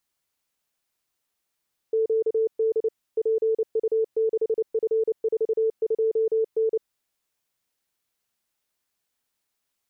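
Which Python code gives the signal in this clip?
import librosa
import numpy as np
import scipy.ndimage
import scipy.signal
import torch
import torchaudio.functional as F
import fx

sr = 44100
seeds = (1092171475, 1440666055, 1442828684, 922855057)

y = fx.morse(sr, text='QD PU6F42N', wpm=29, hz=444.0, level_db=-19.0)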